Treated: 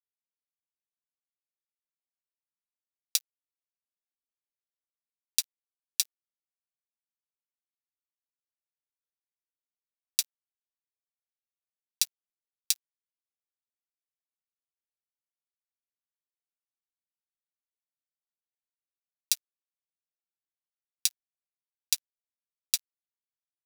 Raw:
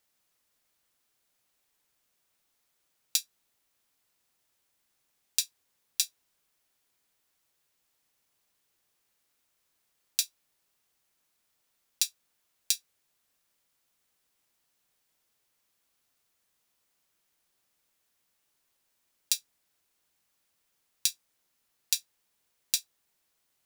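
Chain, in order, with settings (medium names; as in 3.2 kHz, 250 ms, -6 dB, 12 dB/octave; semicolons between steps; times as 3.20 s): high-pass 570 Hz; treble shelf 9.2 kHz -3.5 dB; band-stop 7.2 kHz, Q 25; algorithmic reverb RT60 1.5 s, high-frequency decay 0.45×, pre-delay 10 ms, DRR 10.5 dB; crossover distortion -31.5 dBFS; tilt shelf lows -8.5 dB, about 1.3 kHz; trim -3 dB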